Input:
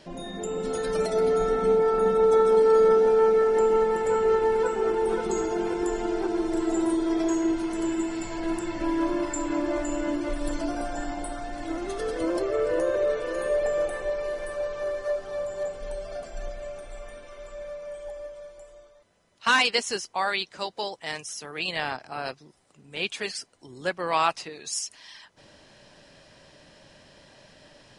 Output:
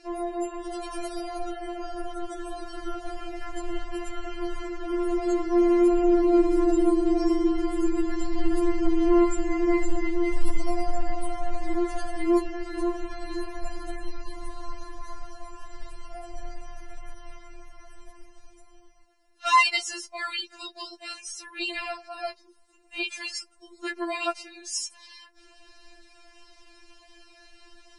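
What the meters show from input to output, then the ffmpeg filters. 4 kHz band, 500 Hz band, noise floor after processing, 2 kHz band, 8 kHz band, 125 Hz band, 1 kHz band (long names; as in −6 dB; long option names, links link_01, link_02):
−2.0 dB, −6.0 dB, −57 dBFS, −2.0 dB, −2.0 dB, can't be measured, −1.5 dB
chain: -af "asubboost=boost=3.5:cutoff=64,bandreject=frequency=3400:width=13,afftfilt=real='re*4*eq(mod(b,16),0)':imag='im*4*eq(mod(b,16),0)':win_size=2048:overlap=0.75,volume=1.5dB"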